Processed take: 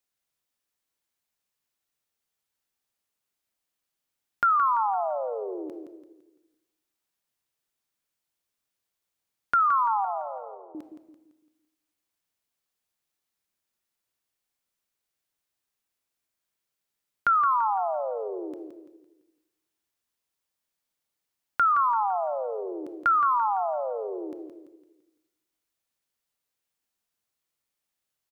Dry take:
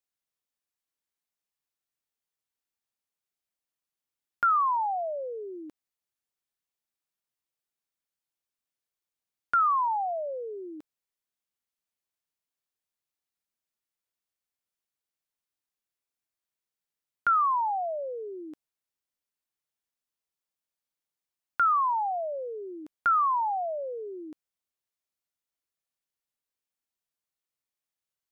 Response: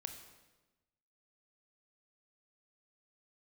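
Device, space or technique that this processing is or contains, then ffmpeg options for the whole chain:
compressed reverb return: -filter_complex "[0:a]asettb=1/sr,asplit=3[s0][s1][s2];[s0]atrim=end=10.054[s3];[s1]atrim=start=10.05:end=10.75,asetpts=PTS-STARTPTS,afade=t=in:d=0.004:c=qsin,afade=t=out:st=0.696:d=0.004:c=qsin,agate=range=0.0224:threshold=0.0501:ratio=3:detection=peak[s4];[s2]atrim=start=10.746[s5];[s3][s4]acrossfade=d=0.004:c1=hsin:c2=qsin[s6];[s6][s5]acrossfade=d=0.004:c1=qsin:c2=hsin,aecho=1:1:169|338|507|676|845:0.398|0.163|0.0669|0.0274|0.0112,asplit=2[s7][s8];[1:a]atrim=start_sample=2205[s9];[s8][s9]afir=irnorm=-1:irlink=0,acompressor=threshold=0.0112:ratio=5,volume=1.26[s10];[s7][s10]amix=inputs=2:normalize=0"

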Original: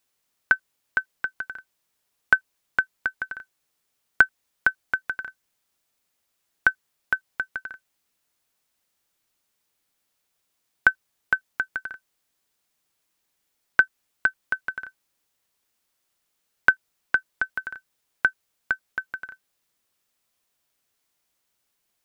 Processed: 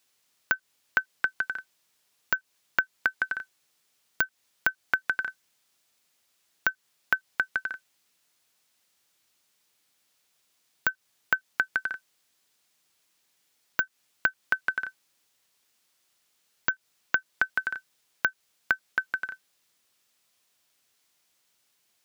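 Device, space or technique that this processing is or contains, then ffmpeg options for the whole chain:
broadcast voice chain: -af "highpass=86,deesser=0.6,acompressor=threshold=0.0562:ratio=3,equalizer=f=4400:t=o:w=2.6:g=5,alimiter=limit=0.422:level=0:latency=1:release=130,volume=1.26"

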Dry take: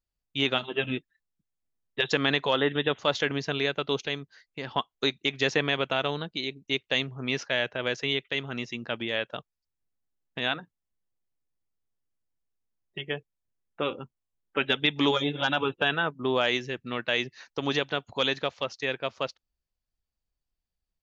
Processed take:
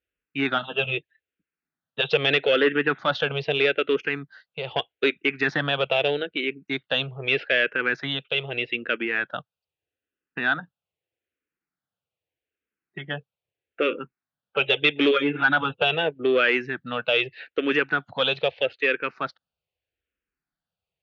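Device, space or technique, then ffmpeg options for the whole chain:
barber-pole phaser into a guitar amplifier: -filter_complex "[0:a]asplit=2[s0][s1];[s1]afreqshift=-0.8[s2];[s0][s2]amix=inputs=2:normalize=1,asoftclip=type=tanh:threshold=0.0841,highpass=110,equalizer=f=120:t=q:w=4:g=-4,equalizer=f=220:t=q:w=4:g=-6,equalizer=f=480:t=q:w=4:g=4,equalizer=f=1000:t=q:w=4:g=-7,equalizer=f=1500:t=q:w=4:g=6,equalizer=f=2600:t=q:w=4:g=5,lowpass=f=3600:w=0.5412,lowpass=f=3600:w=1.3066,asettb=1/sr,asplit=3[s3][s4][s5];[s3]atrim=end=9.284[s6];[s4]atrim=start=9.28:end=10.56,asetpts=PTS-STARTPTS,afade=t=in:d=0.004:c=qsin,afade=t=out:st=1.276:d=0.004:c=qsin,bandreject=f=2200:w=8.9[s7];[s5]atrim=start=10.556[s8];[s6][s7]acrossfade=d=0.004:c1=hsin:c2=qsin[s9];[s9][s8]acrossfade=d=0.004:c1=qsin:c2=hsin,volume=2.51"

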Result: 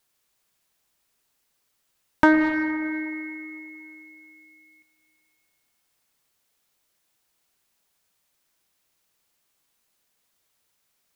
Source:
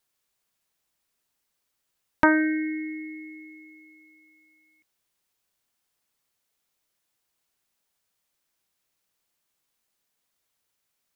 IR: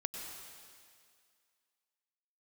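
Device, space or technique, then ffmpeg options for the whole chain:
saturated reverb return: -filter_complex "[0:a]asettb=1/sr,asplit=3[s0][s1][s2];[s0]atrim=end=2.244[s3];[s1]atrim=start=2.24:end=2.82,asetpts=PTS-STARTPTS,afade=t=in:d=0.004:c=qsin,afade=t=out:st=0.576:d=0.004:c=qsin,highshelf=f=2800:g=-9.5[s4];[s2]atrim=start=2.816[s5];[s3][s4]acrossfade=d=0.004:c1=hsin:c2=qsin[s6];[s6][s5]acrossfade=d=0.004:c1=qsin:c2=hsin,asplit=2[s7][s8];[1:a]atrim=start_sample=2205[s9];[s8][s9]afir=irnorm=-1:irlink=0,asoftclip=type=tanh:threshold=0.106,volume=0.944[s10];[s7][s10]amix=inputs=2:normalize=0"

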